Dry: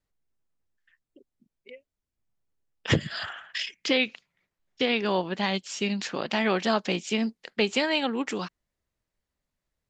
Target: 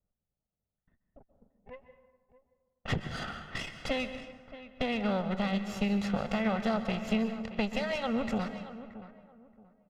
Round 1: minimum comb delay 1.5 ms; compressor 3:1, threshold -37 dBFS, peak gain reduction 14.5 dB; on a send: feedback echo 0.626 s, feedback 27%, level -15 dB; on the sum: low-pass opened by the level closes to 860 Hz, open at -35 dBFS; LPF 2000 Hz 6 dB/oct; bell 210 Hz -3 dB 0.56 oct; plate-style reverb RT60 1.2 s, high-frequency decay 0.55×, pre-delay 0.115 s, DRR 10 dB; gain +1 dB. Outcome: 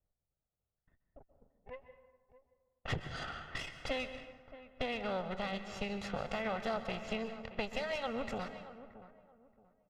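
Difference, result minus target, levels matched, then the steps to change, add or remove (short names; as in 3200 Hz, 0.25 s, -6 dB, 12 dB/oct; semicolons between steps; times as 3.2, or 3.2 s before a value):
250 Hz band -5.0 dB; compressor: peak gain reduction +4 dB
change: compressor 3:1, threshold -31 dBFS, peak gain reduction 10.5 dB; change: bell 210 Hz +6.5 dB 0.56 oct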